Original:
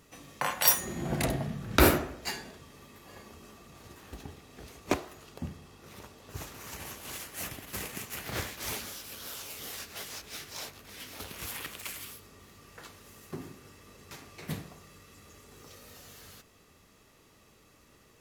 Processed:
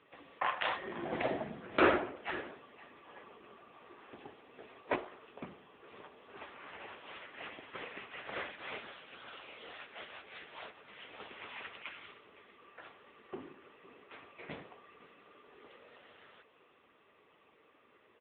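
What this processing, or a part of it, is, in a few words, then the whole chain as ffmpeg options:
satellite phone: -af "highpass=360,lowpass=3300,aecho=1:1:510:0.133,volume=1.26" -ar 8000 -c:a libopencore_amrnb -b:a 6700

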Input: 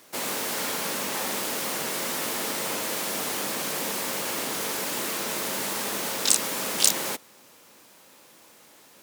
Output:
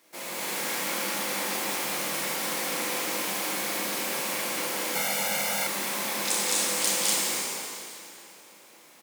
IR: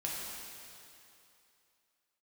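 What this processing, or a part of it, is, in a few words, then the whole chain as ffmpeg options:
stadium PA: -filter_complex "[0:a]highpass=160,equalizer=f=2200:t=o:w=0.23:g=5,aecho=1:1:209.9|247.8:0.891|0.708[s0];[1:a]atrim=start_sample=2205[s1];[s0][s1]afir=irnorm=-1:irlink=0,asettb=1/sr,asplit=3[s2][s3][s4];[s2]atrim=end=4.954[s5];[s3]atrim=start=4.95:end=5.67,asetpts=PTS-STARTPTS,afade=t=in:d=0.004:c=qsin,afade=t=out:st=0.716:d=0.004:c=qsin,aecho=1:1:1.4:0.92,atrim=end_sample=31752[s6];[s4]atrim=start=5.666[s7];[s5][s6]acrossfade=d=0.004:c1=hsin:c2=qsin[s8];[s8][s7]acrossfade=d=0.004:c1=qsin:c2=hsin,volume=0.422"

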